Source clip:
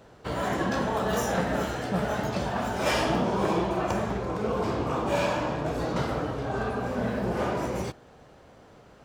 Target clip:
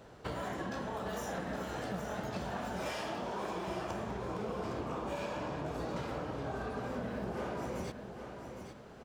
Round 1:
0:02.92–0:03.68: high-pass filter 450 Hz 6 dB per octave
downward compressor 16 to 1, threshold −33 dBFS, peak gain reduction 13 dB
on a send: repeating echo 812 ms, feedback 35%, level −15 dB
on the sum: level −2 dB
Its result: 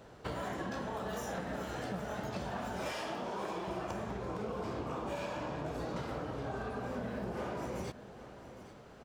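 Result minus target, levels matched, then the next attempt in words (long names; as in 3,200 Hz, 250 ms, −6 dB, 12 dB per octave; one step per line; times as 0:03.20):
echo-to-direct −6.5 dB
0:02.92–0:03.68: high-pass filter 450 Hz 6 dB per octave
downward compressor 16 to 1, threshold −33 dBFS, peak gain reduction 13 dB
on a send: repeating echo 812 ms, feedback 35%, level −8.5 dB
on the sum: level −2 dB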